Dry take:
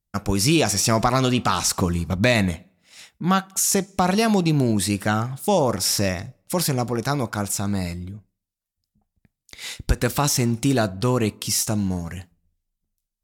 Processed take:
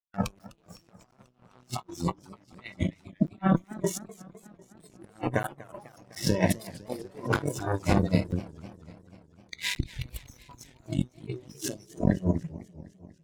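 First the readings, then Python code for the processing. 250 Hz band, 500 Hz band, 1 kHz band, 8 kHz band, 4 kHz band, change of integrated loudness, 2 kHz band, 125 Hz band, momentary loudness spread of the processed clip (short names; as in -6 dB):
-8.0 dB, -10.0 dB, -12.0 dB, -17.5 dB, -14.0 dB, -9.0 dB, -9.5 dB, -7.5 dB, 22 LU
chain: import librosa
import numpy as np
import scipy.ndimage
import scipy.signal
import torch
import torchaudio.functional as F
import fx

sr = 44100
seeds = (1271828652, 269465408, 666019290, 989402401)

y = x + 10.0 ** (-5.5 / 20.0) * np.pad(x, (int(299 * sr / 1000.0), 0))[:len(x)]
y = fx.room_shoebox(y, sr, seeds[0], volume_m3=180.0, walls='furnished', distance_m=1.0)
y = fx.over_compress(y, sr, threshold_db=-28.0, ratio=-1.0)
y = fx.cheby_harmonics(y, sr, harmonics=(3, 7, 8), levels_db=(-25, -19, -34), full_scale_db=-9.0)
y = fx.high_shelf(y, sr, hz=8500.0, db=-5.0)
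y = fx.noise_reduce_blind(y, sr, reduce_db=19)
y = fx.high_shelf(y, sr, hz=2900.0, db=-10.5)
y = fx.buffer_crackle(y, sr, first_s=0.39, period_s=0.72, block=512, kind='zero')
y = fx.echo_warbled(y, sr, ms=249, feedback_pct=64, rate_hz=2.8, cents=216, wet_db=-19.0)
y = y * 10.0 ** (3.5 / 20.0)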